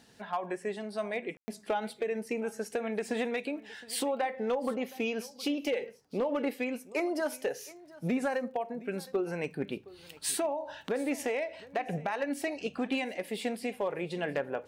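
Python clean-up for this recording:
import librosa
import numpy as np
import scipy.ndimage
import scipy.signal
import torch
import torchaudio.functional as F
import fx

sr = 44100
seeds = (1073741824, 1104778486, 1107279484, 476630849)

y = fx.fix_declip(x, sr, threshold_db=-23.0)
y = fx.fix_declick_ar(y, sr, threshold=6.5)
y = fx.fix_ambience(y, sr, seeds[0], print_start_s=9.75, print_end_s=10.25, start_s=1.37, end_s=1.48)
y = fx.fix_echo_inverse(y, sr, delay_ms=716, level_db=-20.5)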